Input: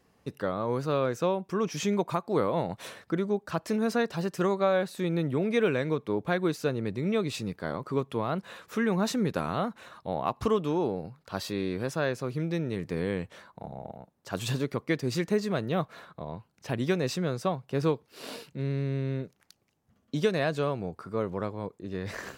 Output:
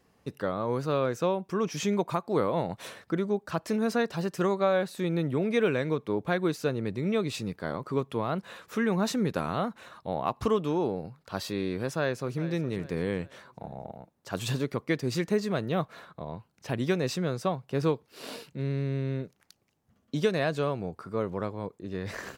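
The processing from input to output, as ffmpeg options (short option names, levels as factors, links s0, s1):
-filter_complex "[0:a]asplit=2[s0][s1];[s1]afade=t=in:st=11.85:d=0.01,afade=t=out:st=12.45:d=0.01,aecho=0:1:410|820|1230|1640:0.177828|0.0711312|0.0284525|0.011381[s2];[s0][s2]amix=inputs=2:normalize=0"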